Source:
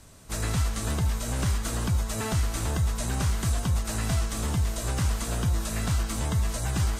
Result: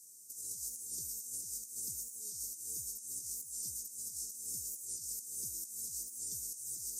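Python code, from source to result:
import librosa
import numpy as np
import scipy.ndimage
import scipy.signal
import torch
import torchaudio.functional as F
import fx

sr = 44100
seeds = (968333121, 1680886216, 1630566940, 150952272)

y = scipy.signal.sosfilt(scipy.signal.ellip(3, 1.0, 40, [420.0, 5800.0], 'bandstop', fs=sr, output='sos'), x)
y = np.diff(y, prepend=0.0)
y = fx.over_compress(y, sr, threshold_db=-42.0, ratio=-0.5)
y = fx.record_warp(y, sr, rpm=45.0, depth_cents=100.0)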